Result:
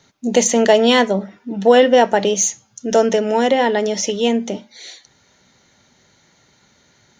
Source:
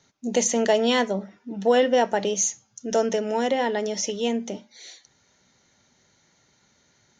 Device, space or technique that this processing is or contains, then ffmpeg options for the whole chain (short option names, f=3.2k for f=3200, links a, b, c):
exciter from parts: -filter_complex "[0:a]asplit=2[a][b];[b]highpass=2.2k,asoftclip=type=tanh:threshold=-18dB,highpass=f=4.9k:w=0.5412,highpass=f=4.9k:w=1.3066,volume=-9dB[c];[a][c]amix=inputs=2:normalize=0,volume=8dB"